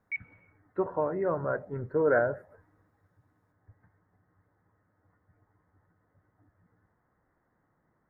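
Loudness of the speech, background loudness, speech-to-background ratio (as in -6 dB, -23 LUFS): -30.0 LUFS, -38.0 LUFS, 8.0 dB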